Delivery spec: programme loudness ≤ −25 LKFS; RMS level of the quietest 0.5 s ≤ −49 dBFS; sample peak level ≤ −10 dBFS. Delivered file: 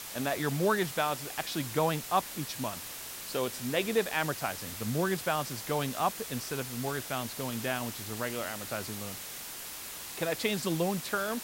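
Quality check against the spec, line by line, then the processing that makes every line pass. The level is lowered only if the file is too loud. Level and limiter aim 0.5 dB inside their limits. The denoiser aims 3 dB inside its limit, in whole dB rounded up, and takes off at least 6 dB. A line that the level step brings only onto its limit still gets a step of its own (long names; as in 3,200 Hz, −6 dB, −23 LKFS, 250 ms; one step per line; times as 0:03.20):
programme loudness −32.5 LKFS: in spec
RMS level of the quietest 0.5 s −42 dBFS: out of spec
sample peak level −14.0 dBFS: in spec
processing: broadband denoise 10 dB, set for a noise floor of −42 dBFS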